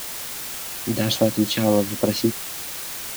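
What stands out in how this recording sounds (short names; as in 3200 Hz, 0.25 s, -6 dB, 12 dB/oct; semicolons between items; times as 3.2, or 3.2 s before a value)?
phasing stages 2, 3.6 Hz, lowest notch 620–3300 Hz; a quantiser's noise floor 6-bit, dither triangular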